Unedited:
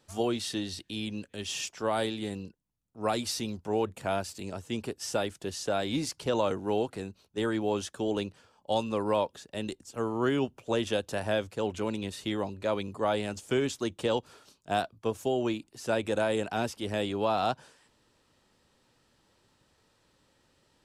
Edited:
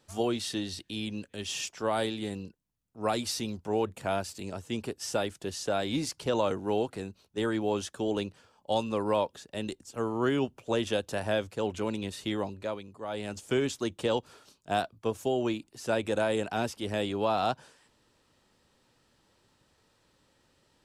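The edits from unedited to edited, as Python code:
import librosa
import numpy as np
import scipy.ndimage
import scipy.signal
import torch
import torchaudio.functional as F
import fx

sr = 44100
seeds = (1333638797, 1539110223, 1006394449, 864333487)

y = fx.edit(x, sr, fx.fade_down_up(start_s=12.34, length_s=1.2, db=-10.0, fade_s=0.47, curve='qsin'), tone=tone)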